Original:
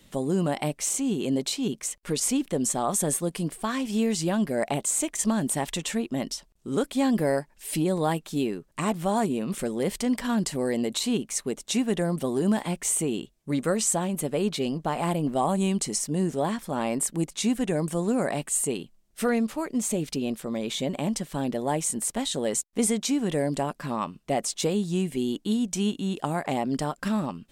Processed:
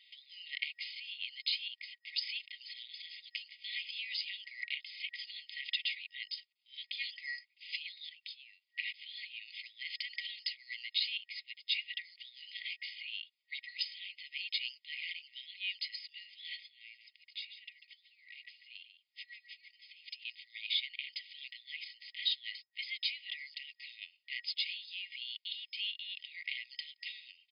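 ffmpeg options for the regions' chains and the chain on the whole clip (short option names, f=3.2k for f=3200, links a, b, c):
-filter_complex "[0:a]asettb=1/sr,asplit=3[a][b][c];[a]atrim=end=8.094[d];[b]atrim=start=8.09:end=8.65,asetpts=PTS-STARTPTS,afade=t=in:d=0.004:c=qsin,afade=t=out:st=0.556:d=0.004:c=qsin,aecho=1:1:3:0.37,atrim=end_sample=24696,acompressor=threshold=-36dB:ratio=12:attack=3.2:release=140:knee=1:detection=peak[e];[c]atrim=start=8.646[f];[d][e]acrossfade=d=0.004:c1=hsin:c2=qsin[g];[g][f]acrossfade=d=0.004:c1=qsin:c2=hsin,asettb=1/sr,asplit=3[h][i][j];[h]atrim=end=16.664[k];[i]atrim=start=16.66:end=20.25,asetpts=PTS-STARTPTS,afade=t=in:d=0.004:c=qsin,afade=t=out:st=3.586:d=0.004:c=qsin,acompressor=threshold=-36dB:ratio=6:attack=3.2:release=140:knee=1:detection=peak,aecho=1:1:144:0.299,atrim=end_sample=158319[l];[j]atrim=start=20.246[m];[k][l]acrossfade=d=0.004:c1=hsin:c2=qsin[n];[n][m]acrossfade=d=0.004:c1=qsin:c2=hsin,afftfilt=real='re*between(b*sr/4096,1900,5100)':imag='im*between(b*sr/4096,1900,5100)':win_size=4096:overlap=0.75,bandreject=f=4k:w=16,aecho=1:1:3.2:0.33,volume=1dB"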